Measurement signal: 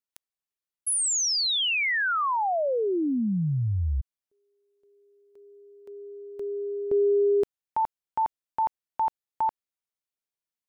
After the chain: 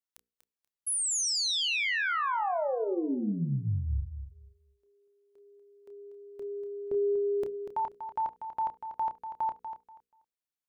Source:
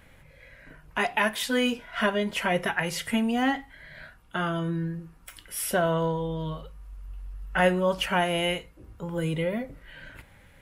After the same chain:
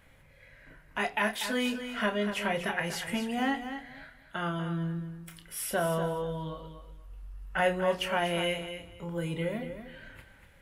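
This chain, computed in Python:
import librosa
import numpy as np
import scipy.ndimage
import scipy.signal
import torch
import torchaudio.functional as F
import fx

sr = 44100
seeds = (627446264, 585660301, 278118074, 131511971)

p1 = fx.hum_notches(x, sr, base_hz=60, count=8)
p2 = fx.doubler(p1, sr, ms=29.0, db=-9.0)
p3 = p2 + fx.echo_feedback(p2, sr, ms=241, feedback_pct=21, wet_db=-9.5, dry=0)
y = p3 * 10.0 ** (-5.0 / 20.0)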